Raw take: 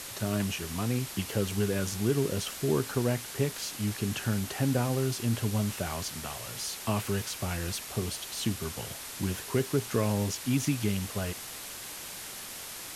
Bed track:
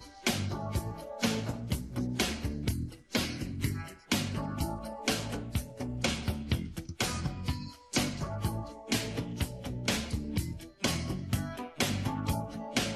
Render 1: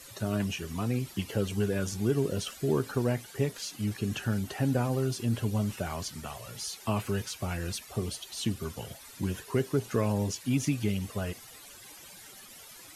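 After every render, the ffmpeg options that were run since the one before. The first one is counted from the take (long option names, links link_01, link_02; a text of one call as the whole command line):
ffmpeg -i in.wav -af "afftdn=noise_reduction=14:noise_floor=-42" out.wav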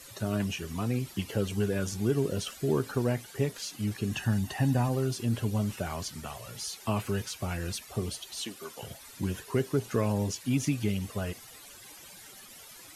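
ffmpeg -i in.wav -filter_complex "[0:a]asettb=1/sr,asplit=3[link_01][link_02][link_03];[link_01]atrim=end=4.134[link_04];[link_02]atrim=start=4.13:end=4.89,asetpts=PTS-STARTPTS,afade=type=in:duration=0.004:curve=qsin,afade=type=out:start_time=0.756:duration=0.004:curve=qsin,aecho=1:1:1.1:0.54,atrim=end_sample=33516[link_05];[link_03]atrim=start=4.886[link_06];[link_04][link_05]acrossfade=duration=0.004:curve1=hsin:curve2=qsin[link_07];[link_07][link_06]acrossfade=duration=0.004:curve1=qsin:curve2=hsin,asettb=1/sr,asplit=3[link_08][link_09][link_10];[link_08]atrim=end=8.434[link_11];[link_09]atrim=start=8.43:end=8.83,asetpts=PTS-STARTPTS,afade=type=in:duration=0.004:curve=qsin,afade=type=out:start_time=0.396:duration=0.004:curve=qsin,highpass=430[link_12];[link_10]atrim=start=8.826[link_13];[link_11][link_12]acrossfade=duration=0.004:curve1=hsin:curve2=qsin[link_14];[link_14][link_13]acrossfade=duration=0.004:curve1=qsin:curve2=hsin" out.wav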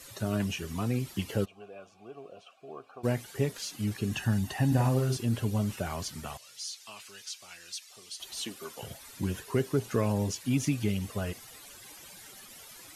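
ffmpeg -i in.wav -filter_complex "[0:a]asplit=3[link_01][link_02][link_03];[link_01]afade=type=out:start_time=1.44:duration=0.02[link_04];[link_02]asplit=3[link_05][link_06][link_07];[link_05]bandpass=frequency=730:width_type=q:width=8,volume=0dB[link_08];[link_06]bandpass=frequency=1090:width_type=q:width=8,volume=-6dB[link_09];[link_07]bandpass=frequency=2440:width_type=q:width=8,volume=-9dB[link_10];[link_08][link_09][link_10]amix=inputs=3:normalize=0,afade=type=in:start_time=1.44:duration=0.02,afade=type=out:start_time=3.03:duration=0.02[link_11];[link_03]afade=type=in:start_time=3.03:duration=0.02[link_12];[link_04][link_11][link_12]amix=inputs=3:normalize=0,asettb=1/sr,asplit=3[link_13][link_14][link_15];[link_13]atrim=end=4.674[link_16];[link_14]atrim=start=4.67:end=5.17,asetpts=PTS-STARTPTS,afade=type=in:duration=0.004:curve=qsin,afade=type=out:start_time=0.496:duration=0.004:curve=qsin,asplit=2[link_17][link_18];[link_18]adelay=47,volume=-4dB[link_19];[link_17][link_19]amix=inputs=2:normalize=0,atrim=end_sample=22050[link_20];[link_15]atrim=start=5.166[link_21];[link_16][link_20]acrossfade=duration=0.004:curve1=hsin:curve2=qsin[link_22];[link_22][link_21]acrossfade=duration=0.004:curve1=qsin:curve2=hsin,asettb=1/sr,asplit=3[link_23][link_24][link_25];[link_23]atrim=end=6.374[link_26];[link_24]atrim=start=6.37:end=8.2,asetpts=PTS-STARTPTS,afade=type=in:duration=0.004:curve=qsin,afade=type=out:start_time=1.826:duration=0.004:curve=qsin,bandpass=frequency=5100:width_type=q:width=1[link_27];[link_25]atrim=start=8.196[link_28];[link_26][link_27]acrossfade=duration=0.004:curve1=hsin:curve2=qsin[link_29];[link_29][link_28]acrossfade=duration=0.004:curve1=qsin:curve2=hsin" out.wav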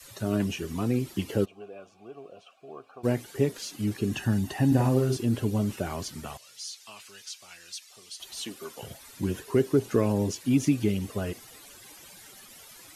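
ffmpeg -i in.wav -af "adynamicequalizer=threshold=0.00708:dfrequency=330:dqfactor=1.2:tfrequency=330:tqfactor=1.2:attack=5:release=100:ratio=0.375:range=4:mode=boostabove:tftype=bell" out.wav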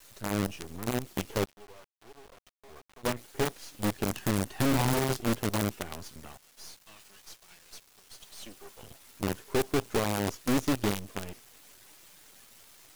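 ffmpeg -i in.wav -af "acrusher=bits=5:dc=4:mix=0:aa=0.000001,aeval=exprs='(tanh(11.2*val(0)+0.65)-tanh(0.65))/11.2':channel_layout=same" out.wav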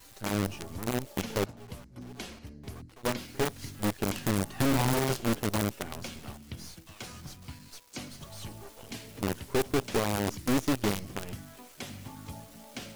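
ffmpeg -i in.wav -i bed.wav -filter_complex "[1:a]volume=-11.5dB[link_01];[0:a][link_01]amix=inputs=2:normalize=0" out.wav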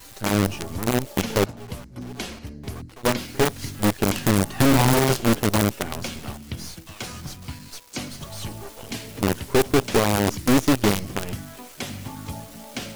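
ffmpeg -i in.wav -af "volume=9dB" out.wav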